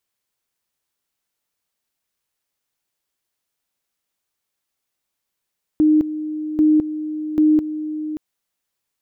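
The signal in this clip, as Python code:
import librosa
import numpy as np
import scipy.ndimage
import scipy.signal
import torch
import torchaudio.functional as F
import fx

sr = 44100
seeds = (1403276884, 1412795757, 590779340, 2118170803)

y = fx.two_level_tone(sr, hz=307.0, level_db=-10.5, drop_db=12.5, high_s=0.21, low_s=0.58, rounds=3)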